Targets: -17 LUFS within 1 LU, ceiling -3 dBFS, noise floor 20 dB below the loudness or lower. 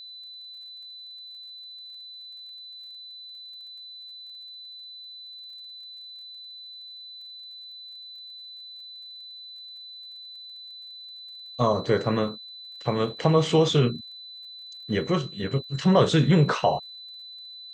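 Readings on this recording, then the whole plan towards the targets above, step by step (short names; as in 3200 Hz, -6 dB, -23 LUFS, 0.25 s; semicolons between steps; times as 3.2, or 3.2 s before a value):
ticks 31/s; steady tone 4000 Hz; tone level -40 dBFS; loudness -24.0 LUFS; peak -6.5 dBFS; loudness target -17.0 LUFS
-> de-click; notch 4000 Hz, Q 30; gain +7 dB; limiter -3 dBFS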